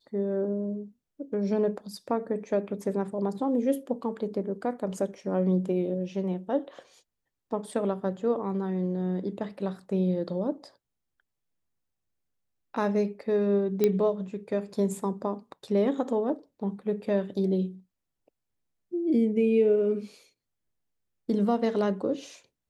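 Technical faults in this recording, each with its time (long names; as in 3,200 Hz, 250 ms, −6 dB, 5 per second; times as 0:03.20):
0:13.84: click −11 dBFS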